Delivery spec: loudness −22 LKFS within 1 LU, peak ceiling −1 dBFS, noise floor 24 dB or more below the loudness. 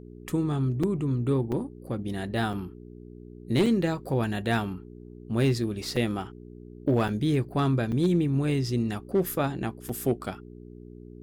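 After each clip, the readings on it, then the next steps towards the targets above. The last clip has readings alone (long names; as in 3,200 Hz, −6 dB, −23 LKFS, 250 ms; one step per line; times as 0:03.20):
number of dropouts 8; longest dropout 4.8 ms; mains hum 60 Hz; hum harmonics up to 420 Hz; level of the hum −46 dBFS; integrated loudness −27.5 LKFS; sample peak −15.0 dBFS; target loudness −22.0 LKFS
→ repair the gap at 0:00.83/0:01.52/0:02.53/0:03.66/0:05.96/0:07.08/0:07.92/0:09.89, 4.8 ms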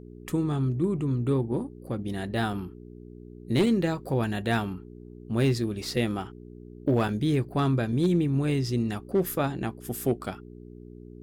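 number of dropouts 0; mains hum 60 Hz; hum harmonics up to 420 Hz; level of the hum −46 dBFS
→ hum removal 60 Hz, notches 7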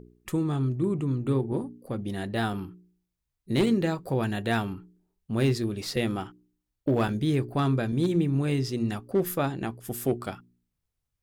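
mains hum none found; integrated loudness −28.0 LKFS; sample peak −14.5 dBFS; target loudness −22.0 LKFS
→ level +6 dB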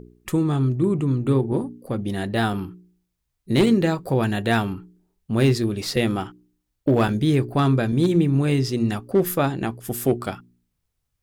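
integrated loudness −22.0 LKFS; sample peak −8.5 dBFS; background noise floor −77 dBFS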